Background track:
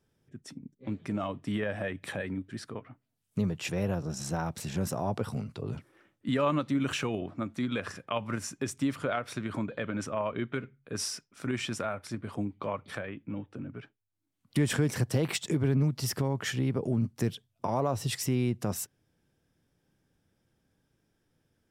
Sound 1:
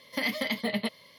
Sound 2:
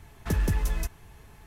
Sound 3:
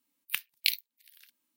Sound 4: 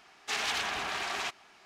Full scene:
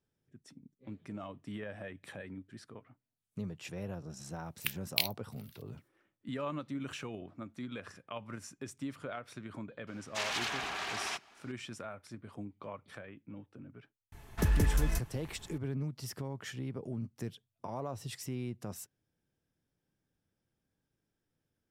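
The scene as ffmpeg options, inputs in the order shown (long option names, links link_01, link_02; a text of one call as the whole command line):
ffmpeg -i bed.wav -i cue0.wav -i cue1.wav -i cue2.wav -i cue3.wav -filter_complex "[0:a]volume=-10.5dB[link_01];[3:a]atrim=end=1.56,asetpts=PTS-STARTPTS,volume=-3.5dB,afade=type=in:duration=0.004:curve=hsin,afade=type=out:start_time=1.556:duration=0.004:curve=hsin,adelay=4320[link_02];[4:a]atrim=end=1.65,asetpts=PTS-STARTPTS,volume=-3.5dB,afade=type=in:duration=0.004:curve=hsin,afade=type=out:start_time=1.646:duration=0.004:curve=hsin,adelay=9870[link_03];[2:a]atrim=end=1.46,asetpts=PTS-STARTPTS,volume=-2dB,afade=type=in:duration=0.004:curve=hsin,afade=type=out:start_time=1.456:duration=0.004:curve=hsin,adelay=622692S[link_04];[link_01][link_02][link_03][link_04]amix=inputs=4:normalize=0" out.wav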